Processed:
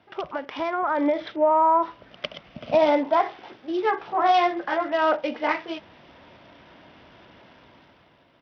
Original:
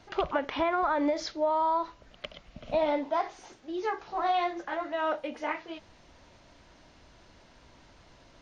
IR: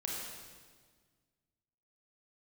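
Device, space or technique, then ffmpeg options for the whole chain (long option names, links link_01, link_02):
Bluetooth headset: -af "highpass=120,dynaudnorm=framelen=220:gausssize=9:maxgain=11dB,aresample=8000,aresample=44100,volume=-2.5dB" -ar 44100 -c:a sbc -b:a 64k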